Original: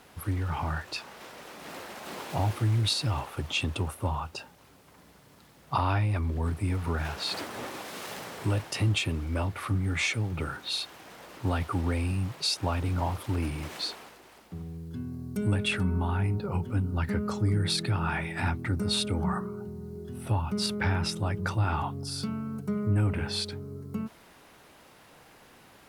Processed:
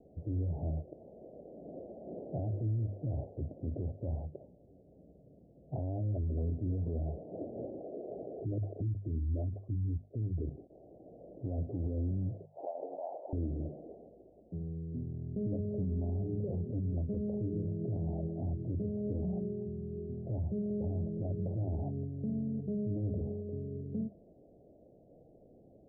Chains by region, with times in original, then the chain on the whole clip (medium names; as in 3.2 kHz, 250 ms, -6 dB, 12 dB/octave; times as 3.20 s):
7.81–10.70 s: resonances exaggerated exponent 2 + comb 2.8 ms, depth 32%
12.45–13.33 s: high-pass 820 Hz 24 dB/octave + level flattener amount 100%
whole clip: steep low-pass 670 Hz 72 dB/octave; hum notches 50/100/150/200/250 Hz; peak limiter -28 dBFS